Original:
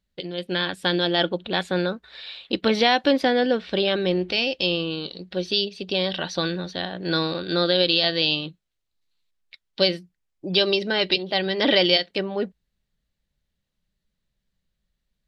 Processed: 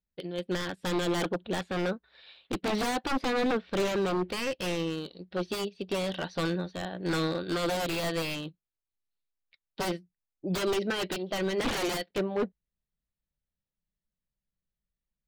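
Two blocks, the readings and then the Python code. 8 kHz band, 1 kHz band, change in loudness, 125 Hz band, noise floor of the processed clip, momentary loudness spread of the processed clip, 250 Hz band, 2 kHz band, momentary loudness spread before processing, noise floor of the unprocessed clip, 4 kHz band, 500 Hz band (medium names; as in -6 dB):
+5.0 dB, -5.5 dB, -8.5 dB, -4.0 dB, under -85 dBFS, 8 LU, -6.0 dB, -8.5 dB, 12 LU, -79 dBFS, -14.5 dB, -7.5 dB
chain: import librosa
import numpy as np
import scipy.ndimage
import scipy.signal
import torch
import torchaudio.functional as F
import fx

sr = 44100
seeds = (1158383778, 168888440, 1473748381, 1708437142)

y = 10.0 ** (-20.5 / 20.0) * (np.abs((x / 10.0 ** (-20.5 / 20.0) + 3.0) % 4.0 - 2.0) - 1.0)
y = fx.high_shelf(y, sr, hz=3000.0, db=-10.5)
y = fx.upward_expand(y, sr, threshold_db=-49.0, expansion=1.5)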